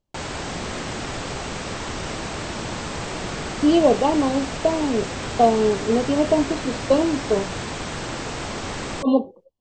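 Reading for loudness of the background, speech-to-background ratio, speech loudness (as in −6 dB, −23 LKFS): −29.5 LKFS, 8.5 dB, −21.0 LKFS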